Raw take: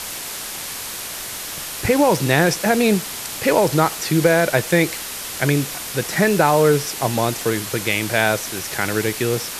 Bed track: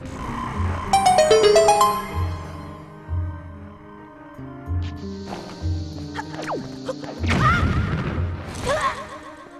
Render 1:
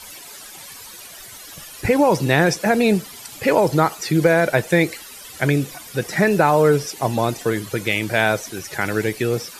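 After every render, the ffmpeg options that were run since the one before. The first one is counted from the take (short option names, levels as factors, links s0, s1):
-af "afftdn=nr=14:nf=-30"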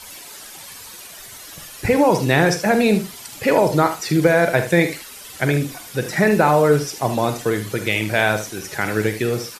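-filter_complex "[0:a]asplit=2[s0][s1];[s1]adelay=47,volume=0.282[s2];[s0][s2]amix=inputs=2:normalize=0,asplit=2[s3][s4];[s4]aecho=0:1:75:0.266[s5];[s3][s5]amix=inputs=2:normalize=0"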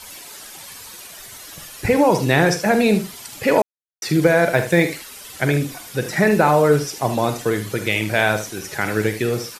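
-filter_complex "[0:a]asettb=1/sr,asplit=3[s0][s1][s2];[s0]atrim=end=4.554[s3];[s1]atrim=start=4.55:end=4.98,asetpts=PTS-STARTPTS,afade=t=in:d=0.004:c=qsin,afade=t=out:st=0.426:d=0.004:c=qsin,acrusher=bits=9:mode=log:mix=0:aa=0.000001[s4];[s2]atrim=start=4.976[s5];[s3][s4]acrossfade=d=0.004:c1=hsin:c2=qsin[s6];[s6][s5]acrossfade=d=0.004:c1=qsin:c2=hsin,asplit=3[s7][s8][s9];[s7]atrim=end=3.62,asetpts=PTS-STARTPTS,afade=t=out:st=3.616:d=0.004:c=hsin[s10];[s8]atrim=start=3.62:end=4.02,asetpts=PTS-STARTPTS,volume=0[s11];[s9]atrim=start=4.02,asetpts=PTS-STARTPTS,afade=t=in:d=0.004:c=hsin[s12];[s10][s11][s12]concat=n=3:v=0:a=1"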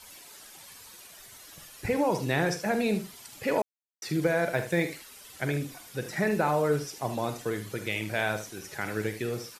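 -af "volume=0.282"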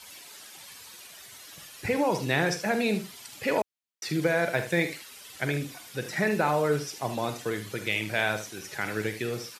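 -af "highpass=73,equalizer=f=3100:w=0.59:g=4.5"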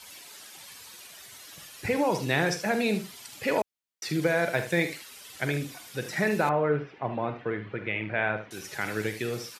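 -filter_complex "[0:a]asettb=1/sr,asplit=3[s0][s1][s2];[s0]atrim=end=6.494[s3];[s1]atrim=start=6.49:end=8.51,asetpts=PTS-STARTPTS,afade=t=in:d=0.004:c=qsin,afade=t=out:st=2.016:d=0.004:c=qsin,lowpass=f=2400:w=0.5412,lowpass=f=2400:w=1.3066[s4];[s2]atrim=start=8.506[s5];[s3][s4]acrossfade=d=0.004:c1=hsin:c2=qsin[s6];[s6][s5]acrossfade=d=0.004:c1=qsin:c2=hsin"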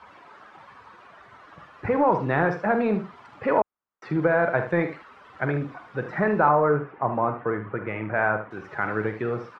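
-filter_complex "[0:a]asplit=2[s0][s1];[s1]asoftclip=type=tanh:threshold=0.075,volume=0.562[s2];[s0][s2]amix=inputs=2:normalize=0,lowpass=f=1200:t=q:w=2.4"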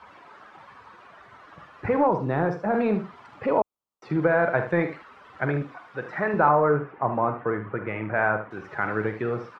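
-filter_complex "[0:a]asettb=1/sr,asplit=3[s0][s1][s2];[s0]atrim=end=2.074[s3];[s1]atrim=start=2.07:end=2.74,asetpts=PTS-STARTPTS,afade=t=in:d=0.004:c=qsin,afade=t=out:st=0.666:d=0.004:c=qsin,equalizer=f=2100:t=o:w=2:g=-8.5[s4];[s2]atrim=start=2.736[s5];[s3][s4]acrossfade=d=0.004:c1=hsin:c2=qsin[s6];[s6][s5]acrossfade=d=0.004:c1=qsin:c2=hsin,asettb=1/sr,asplit=3[s7][s8][s9];[s7]atrim=end=3.464[s10];[s8]atrim=start=3.46:end=4.1,asetpts=PTS-STARTPTS,afade=t=in:d=0.004:c=qsin,afade=t=out:st=0.636:d=0.004:c=qsin,equalizer=f=1700:t=o:w=0.63:g=-14[s11];[s9]atrim=start=4.096[s12];[s10][s11]acrossfade=d=0.004:c1=hsin:c2=qsin[s13];[s13][s12]acrossfade=d=0.004:c1=qsin:c2=hsin,asettb=1/sr,asplit=3[s14][s15][s16];[s14]atrim=end=5.624[s17];[s15]atrim=start=5.62:end=6.34,asetpts=PTS-STARTPTS,afade=t=in:d=0.004:c=qsin,afade=t=out:st=0.716:d=0.004:c=qsin,lowshelf=f=340:g=-9.5[s18];[s16]atrim=start=6.336[s19];[s17][s18]acrossfade=d=0.004:c1=hsin:c2=qsin[s20];[s20][s19]acrossfade=d=0.004:c1=qsin:c2=hsin"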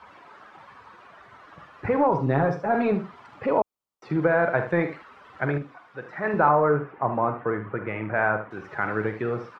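-filter_complex "[0:a]asettb=1/sr,asplit=3[s0][s1][s2];[s0]atrim=end=2.114[s3];[s1]atrim=start=2.11:end=2.92,asetpts=PTS-STARTPTS,afade=t=in:d=0.004:c=qsin,afade=t=out:st=0.806:d=0.004:c=qsin,aecho=1:1:7.3:0.65,atrim=end_sample=35721[s4];[s2]atrim=start=2.916[s5];[s3][s4]acrossfade=d=0.004:c1=hsin:c2=qsin[s6];[s6][s5]acrossfade=d=0.004:c1=qsin:c2=hsin,asplit=3[s7][s8][s9];[s7]atrim=end=5.582[s10];[s8]atrim=start=5.578:end=6.242,asetpts=PTS-STARTPTS,volume=0.596[s11];[s9]atrim=start=6.238[s12];[s10][s11]acrossfade=d=0.004:c1=hsin:c2=hsin[s13];[s13][s12]acrossfade=d=0.004:c1=hsin:c2=hsin"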